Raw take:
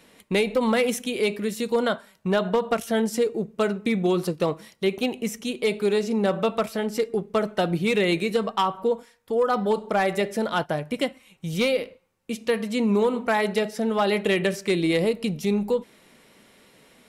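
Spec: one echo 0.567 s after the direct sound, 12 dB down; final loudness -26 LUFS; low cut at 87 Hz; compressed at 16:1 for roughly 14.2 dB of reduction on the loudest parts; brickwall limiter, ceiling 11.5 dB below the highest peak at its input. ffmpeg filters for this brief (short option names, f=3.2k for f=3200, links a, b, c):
-af "highpass=87,acompressor=threshold=-32dB:ratio=16,alimiter=level_in=6.5dB:limit=-24dB:level=0:latency=1,volume=-6.5dB,aecho=1:1:567:0.251,volume=13.5dB"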